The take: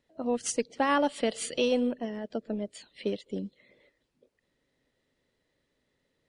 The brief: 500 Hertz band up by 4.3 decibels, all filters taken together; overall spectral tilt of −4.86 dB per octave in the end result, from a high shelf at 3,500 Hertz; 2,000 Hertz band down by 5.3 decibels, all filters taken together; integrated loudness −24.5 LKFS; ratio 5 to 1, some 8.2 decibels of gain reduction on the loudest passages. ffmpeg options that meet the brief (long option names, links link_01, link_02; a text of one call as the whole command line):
ffmpeg -i in.wav -af "equalizer=frequency=500:width_type=o:gain=5,equalizer=frequency=2000:width_type=o:gain=-5,highshelf=frequency=3500:gain=-7.5,acompressor=threshold=-28dB:ratio=5,volume=10dB" out.wav